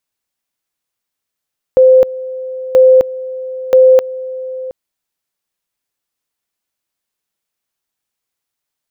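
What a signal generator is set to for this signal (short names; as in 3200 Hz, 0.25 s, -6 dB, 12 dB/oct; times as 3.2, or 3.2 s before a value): two-level tone 517 Hz -3 dBFS, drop 17.5 dB, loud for 0.26 s, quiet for 0.72 s, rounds 3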